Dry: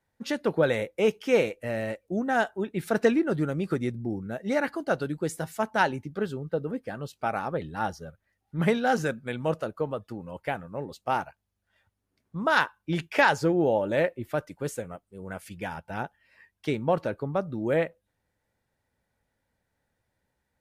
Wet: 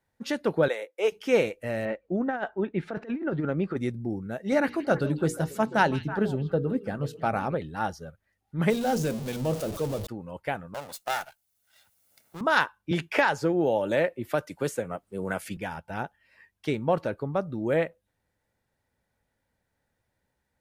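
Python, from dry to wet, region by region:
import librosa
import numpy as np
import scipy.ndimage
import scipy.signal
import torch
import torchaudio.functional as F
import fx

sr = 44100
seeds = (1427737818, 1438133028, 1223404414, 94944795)

y = fx.chain(x, sr, fx.highpass(hz=370.0, slope=24),
    fx.upward_expand(threshold_db=-37.0, expansion=1.5), at=(0.68, 1.12))
y = fx.chain(y, sr, fx.lowpass(hz=2400.0, slope=12),
    fx.peak_eq(hz=110.0, db=-12.0, octaves=0.38),
    fx.over_compress(threshold_db=-27.0, ratio=-0.5), at=(1.85, 3.77))
y = fx.chain(y, sr, fx.low_shelf(hz=340.0, db=8.5),
    fx.hum_notches(base_hz=60, count=8),
    fx.echo_stepped(ms=163, hz=3300.0, octaves=-1.4, feedback_pct=70, wet_db=-8), at=(4.52, 7.55))
y = fx.chain(y, sr, fx.zero_step(step_db=-28.5),
    fx.peak_eq(hz=1600.0, db=-11.0, octaves=1.8),
    fx.hum_notches(base_hz=60, count=9), at=(8.7, 10.07))
y = fx.chain(y, sr, fx.lower_of_two(delay_ms=1.4),
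    fx.riaa(side='recording'),
    fx.band_squash(depth_pct=40), at=(10.74, 12.41))
y = fx.chain(y, sr, fx.low_shelf(hz=150.0, db=-5.0),
    fx.band_squash(depth_pct=70), at=(12.91, 15.57))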